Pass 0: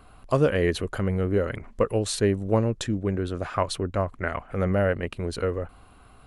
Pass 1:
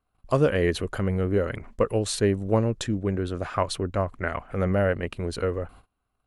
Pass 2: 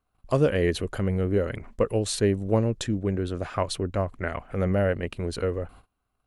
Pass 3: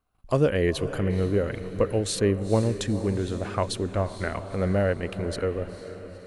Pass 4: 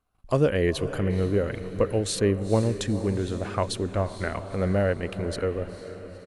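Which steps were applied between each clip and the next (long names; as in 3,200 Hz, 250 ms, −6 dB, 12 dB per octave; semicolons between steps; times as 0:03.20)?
noise gate −46 dBFS, range −27 dB
dynamic equaliser 1,200 Hz, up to −4 dB, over −40 dBFS, Q 1.2
feedback delay with all-pass diffusion 472 ms, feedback 52%, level −12 dB
downsampling to 32,000 Hz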